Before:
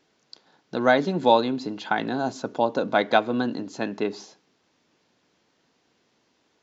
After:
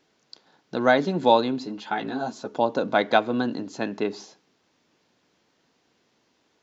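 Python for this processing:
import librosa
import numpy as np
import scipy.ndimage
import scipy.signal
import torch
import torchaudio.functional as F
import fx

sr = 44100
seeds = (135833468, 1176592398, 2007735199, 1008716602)

y = fx.ensemble(x, sr, at=(1.64, 2.53), fade=0.02)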